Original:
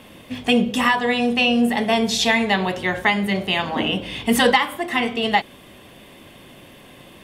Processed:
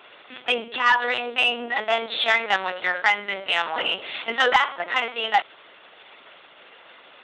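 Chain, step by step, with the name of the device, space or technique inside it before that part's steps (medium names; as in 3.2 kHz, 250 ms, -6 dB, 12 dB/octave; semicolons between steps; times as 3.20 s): talking toy (LPC vocoder at 8 kHz pitch kept; high-pass 600 Hz 12 dB/octave; peaking EQ 1.4 kHz +7 dB 0.49 oct; saturation -6.5 dBFS, distortion -21 dB)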